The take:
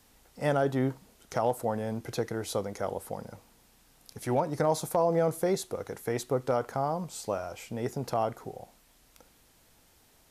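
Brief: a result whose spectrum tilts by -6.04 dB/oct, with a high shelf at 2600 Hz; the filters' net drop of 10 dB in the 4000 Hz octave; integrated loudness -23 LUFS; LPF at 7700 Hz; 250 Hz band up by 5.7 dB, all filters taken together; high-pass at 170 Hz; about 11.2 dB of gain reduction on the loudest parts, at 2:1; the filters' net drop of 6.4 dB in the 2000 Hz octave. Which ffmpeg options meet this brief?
-af "highpass=170,lowpass=7.7k,equalizer=f=250:t=o:g=8.5,equalizer=f=2k:t=o:g=-6,highshelf=f=2.6k:g=-3,equalizer=f=4k:t=o:g=-8,acompressor=threshold=-41dB:ratio=2,volume=16.5dB"

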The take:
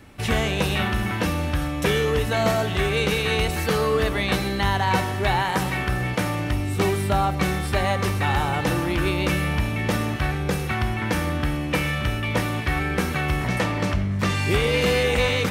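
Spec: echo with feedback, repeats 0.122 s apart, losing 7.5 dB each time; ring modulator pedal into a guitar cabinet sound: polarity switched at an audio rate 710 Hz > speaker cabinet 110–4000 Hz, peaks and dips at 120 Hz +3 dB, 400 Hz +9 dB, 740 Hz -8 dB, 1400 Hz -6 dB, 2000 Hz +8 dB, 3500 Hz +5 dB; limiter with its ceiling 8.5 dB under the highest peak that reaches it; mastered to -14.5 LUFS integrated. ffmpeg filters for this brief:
-af "alimiter=limit=-16dB:level=0:latency=1,aecho=1:1:122|244|366|488|610:0.422|0.177|0.0744|0.0312|0.0131,aeval=exprs='val(0)*sgn(sin(2*PI*710*n/s))':c=same,highpass=110,equalizer=f=120:t=q:w=4:g=3,equalizer=f=400:t=q:w=4:g=9,equalizer=f=740:t=q:w=4:g=-8,equalizer=f=1.4k:t=q:w=4:g=-6,equalizer=f=2k:t=q:w=4:g=8,equalizer=f=3.5k:t=q:w=4:g=5,lowpass=f=4k:w=0.5412,lowpass=f=4k:w=1.3066,volume=7.5dB"

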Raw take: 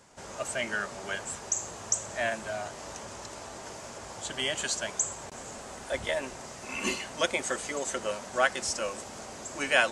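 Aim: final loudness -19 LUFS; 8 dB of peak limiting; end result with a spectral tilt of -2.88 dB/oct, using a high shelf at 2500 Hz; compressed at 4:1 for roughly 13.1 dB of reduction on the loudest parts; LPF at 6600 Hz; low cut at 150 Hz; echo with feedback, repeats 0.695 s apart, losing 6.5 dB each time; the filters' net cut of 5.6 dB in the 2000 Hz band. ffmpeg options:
-af "highpass=150,lowpass=6.6k,equalizer=f=2k:t=o:g=-4.5,highshelf=f=2.5k:g=-7,acompressor=threshold=-39dB:ratio=4,alimiter=level_in=10dB:limit=-24dB:level=0:latency=1,volume=-10dB,aecho=1:1:695|1390|2085|2780|3475|4170:0.473|0.222|0.105|0.0491|0.0231|0.0109,volume=25dB"

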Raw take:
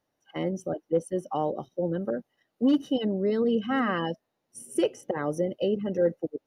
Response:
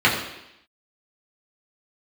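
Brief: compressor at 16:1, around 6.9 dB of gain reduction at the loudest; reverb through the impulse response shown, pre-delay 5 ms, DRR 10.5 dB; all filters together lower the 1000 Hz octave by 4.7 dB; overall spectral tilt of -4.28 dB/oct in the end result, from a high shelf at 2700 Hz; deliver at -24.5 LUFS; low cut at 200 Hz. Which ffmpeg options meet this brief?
-filter_complex "[0:a]highpass=200,equalizer=f=1k:t=o:g=-8,highshelf=f=2.7k:g=8.5,acompressor=threshold=-26dB:ratio=16,asplit=2[a][b];[1:a]atrim=start_sample=2205,adelay=5[c];[b][c]afir=irnorm=-1:irlink=0,volume=-32dB[d];[a][d]amix=inputs=2:normalize=0,volume=8.5dB"

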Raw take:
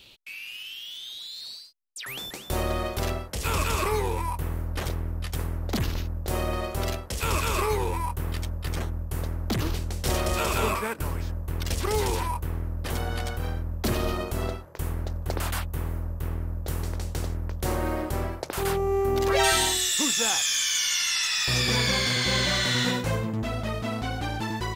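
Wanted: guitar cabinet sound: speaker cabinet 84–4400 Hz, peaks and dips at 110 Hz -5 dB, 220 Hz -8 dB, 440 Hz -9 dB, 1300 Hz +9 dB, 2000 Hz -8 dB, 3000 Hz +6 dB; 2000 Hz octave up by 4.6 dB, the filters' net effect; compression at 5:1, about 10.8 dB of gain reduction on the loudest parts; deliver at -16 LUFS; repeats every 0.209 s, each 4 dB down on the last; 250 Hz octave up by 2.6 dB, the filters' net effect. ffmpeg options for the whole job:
-af "equalizer=f=250:t=o:g=9,equalizer=f=2k:t=o:g=7,acompressor=threshold=-28dB:ratio=5,highpass=84,equalizer=f=110:t=q:w=4:g=-5,equalizer=f=220:t=q:w=4:g=-8,equalizer=f=440:t=q:w=4:g=-9,equalizer=f=1.3k:t=q:w=4:g=9,equalizer=f=2k:t=q:w=4:g=-8,equalizer=f=3k:t=q:w=4:g=6,lowpass=f=4.4k:w=0.5412,lowpass=f=4.4k:w=1.3066,aecho=1:1:209|418|627|836|1045|1254|1463|1672|1881:0.631|0.398|0.25|0.158|0.0994|0.0626|0.0394|0.0249|0.0157,volume=14.5dB"

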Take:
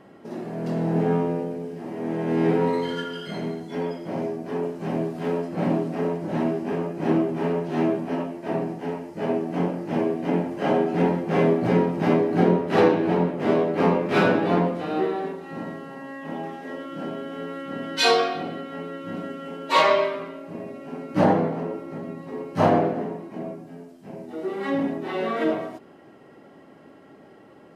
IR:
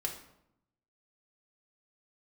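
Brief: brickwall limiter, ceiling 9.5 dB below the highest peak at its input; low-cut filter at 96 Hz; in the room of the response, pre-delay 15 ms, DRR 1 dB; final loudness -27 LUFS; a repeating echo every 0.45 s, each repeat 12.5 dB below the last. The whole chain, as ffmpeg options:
-filter_complex "[0:a]highpass=96,alimiter=limit=-14dB:level=0:latency=1,aecho=1:1:450|900|1350:0.237|0.0569|0.0137,asplit=2[a][b];[1:a]atrim=start_sample=2205,adelay=15[c];[b][c]afir=irnorm=-1:irlink=0,volume=-3dB[d];[a][d]amix=inputs=2:normalize=0,volume=-3.5dB"

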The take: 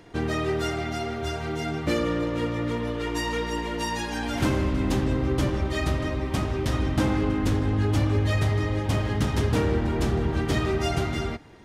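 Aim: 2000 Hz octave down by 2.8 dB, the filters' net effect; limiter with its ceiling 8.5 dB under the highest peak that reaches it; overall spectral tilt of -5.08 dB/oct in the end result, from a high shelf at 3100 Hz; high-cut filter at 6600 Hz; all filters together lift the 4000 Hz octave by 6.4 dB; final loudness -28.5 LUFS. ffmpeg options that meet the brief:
-af "lowpass=6.6k,equalizer=f=2k:t=o:g=-7.5,highshelf=f=3.1k:g=5.5,equalizer=f=4k:t=o:g=7.5,volume=1dB,alimiter=limit=-20dB:level=0:latency=1"

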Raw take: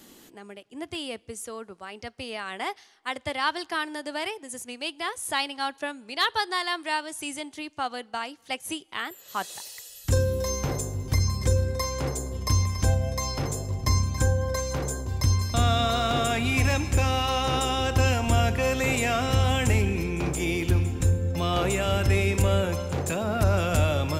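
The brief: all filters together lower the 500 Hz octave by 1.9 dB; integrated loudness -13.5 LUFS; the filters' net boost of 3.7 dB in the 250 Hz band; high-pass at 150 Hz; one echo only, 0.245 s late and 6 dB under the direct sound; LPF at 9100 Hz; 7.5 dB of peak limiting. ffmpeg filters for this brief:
-af "highpass=150,lowpass=9.1k,equalizer=f=250:t=o:g=6.5,equalizer=f=500:t=o:g=-4,alimiter=limit=-19dB:level=0:latency=1,aecho=1:1:245:0.501,volume=15.5dB"

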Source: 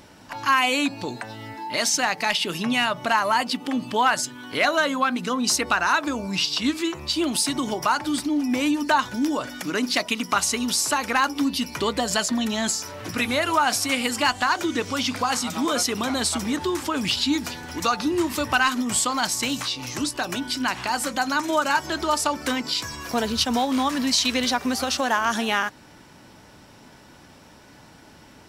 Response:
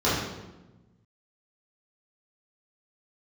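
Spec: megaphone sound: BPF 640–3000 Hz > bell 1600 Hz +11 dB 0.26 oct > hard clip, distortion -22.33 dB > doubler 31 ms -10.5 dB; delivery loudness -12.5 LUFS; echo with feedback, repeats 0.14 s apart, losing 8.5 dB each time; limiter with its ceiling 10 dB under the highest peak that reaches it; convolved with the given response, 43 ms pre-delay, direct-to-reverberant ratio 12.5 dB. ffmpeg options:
-filter_complex "[0:a]alimiter=limit=-19.5dB:level=0:latency=1,aecho=1:1:140|280|420|560:0.376|0.143|0.0543|0.0206,asplit=2[a][b];[1:a]atrim=start_sample=2205,adelay=43[c];[b][c]afir=irnorm=-1:irlink=0,volume=-29dB[d];[a][d]amix=inputs=2:normalize=0,highpass=640,lowpass=3k,equalizer=f=1.6k:t=o:w=0.26:g=11,asoftclip=type=hard:threshold=-18.5dB,asplit=2[e][f];[f]adelay=31,volume=-10.5dB[g];[e][g]amix=inputs=2:normalize=0,volume=16dB"

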